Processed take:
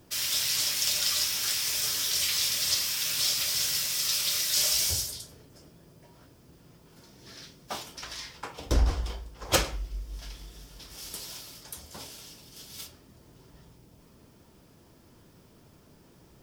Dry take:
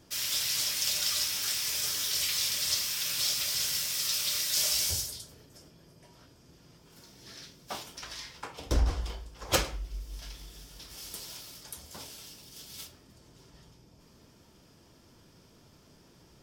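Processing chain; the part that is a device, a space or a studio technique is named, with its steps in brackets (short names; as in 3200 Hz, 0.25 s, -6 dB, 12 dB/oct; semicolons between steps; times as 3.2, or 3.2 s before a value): plain cassette with noise reduction switched in (mismatched tape noise reduction decoder only; wow and flutter 25 cents; white noise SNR 36 dB); gain +2.5 dB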